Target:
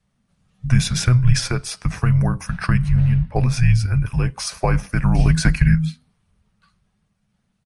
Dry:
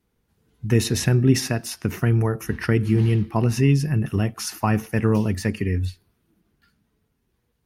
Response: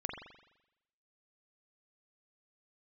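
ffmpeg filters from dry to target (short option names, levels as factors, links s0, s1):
-filter_complex "[0:a]asplit=3[s0][s1][s2];[s0]afade=t=out:st=2.88:d=0.02[s3];[s1]highshelf=f=2600:g=-12,afade=t=in:st=2.88:d=0.02,afade=t=out:st=3.35:d=0.02[s4];[s2]afade=t=in:st=3.35:d=0.02[s5];[s3][s4][s5]amix=inputs=3:normalize=0,asplit=3[s6][s7][s8];[s6]afade=t=out:st=5.18:d=0.02[s9];[s7]acontrast=71,afade=t=in:st=5.18:d=0.02,afade=t=out:st=5.74:d=0.02[s10];[s8]afade=t=in:st=5.74:d=0.02[s11];[s9][s10][s11]amix=inputs=3:normalize=0,afreqshift=-250,aresample=22050,aresample=44100,volume=1.41"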